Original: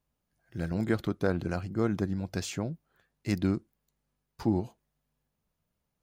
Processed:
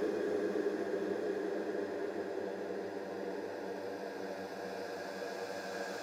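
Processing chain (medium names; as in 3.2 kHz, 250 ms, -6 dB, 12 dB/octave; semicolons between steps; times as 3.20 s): LFO high-pass sine 3.4 Hz 350–1600 Hz; Paulstretch 32×, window 0.50 s, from 2.08 s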